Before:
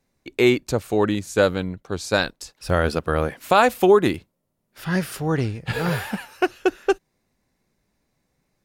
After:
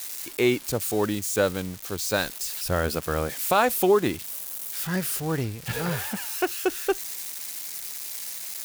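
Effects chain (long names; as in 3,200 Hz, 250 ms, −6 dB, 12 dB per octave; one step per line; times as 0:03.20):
spike at every zero crossing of −20 dBFS
level −5 dB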